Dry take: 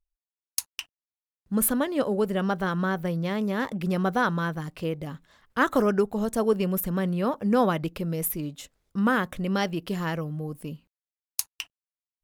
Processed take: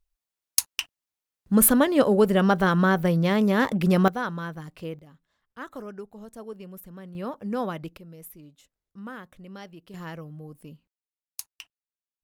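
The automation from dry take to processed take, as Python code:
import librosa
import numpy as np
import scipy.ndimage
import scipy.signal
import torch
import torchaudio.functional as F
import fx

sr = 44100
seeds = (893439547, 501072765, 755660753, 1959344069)

y = fx.gain(x, sr, db=fx.steps((0.0, 6.0), (4.08, -5.5), (4.99, -16.0), (7.15, -7.0), (7.97, -16.0), (9.94, -8.5)))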